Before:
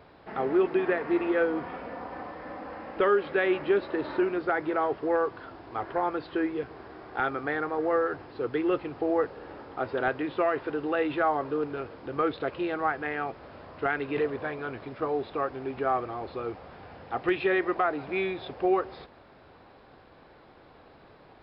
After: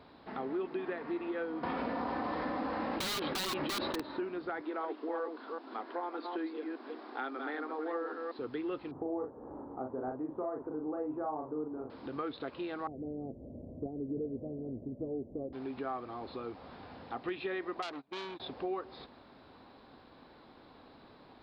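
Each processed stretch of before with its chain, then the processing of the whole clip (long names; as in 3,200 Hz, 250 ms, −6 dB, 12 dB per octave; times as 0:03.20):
0:01.63–0:04.01: wrap-around overflow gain 21 dB + envelope flattener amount 100%
0:04.61–0:08.39: delay that plays each chunk backwards 195 ms, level −5.5 dB + Butterworth high-pass 230 Hz 48 dB per octave
0:08.91–0:11.90: low-pass filter 1,000 Hz 24 dB per octave + double-tracking delay 39 ms −4 dB
0:12.87–0:15.53: elliptic low-pass filter 610 Hz, stop band 60 dB + low-shelf EQ 220 Hz +11 dB
0:17.82–0:18.40: noise gate −35 dBFS, range −29 dB + saturating transformer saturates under 3,100 Hz
whole clip: graphic EQ with 15 bands 250 Hz +9 dB, 1,000 Hz +4 dB, 4,000 Hz +9 dB; downward compressor 2 to 1, threshold −34 dBFS; level −6 dB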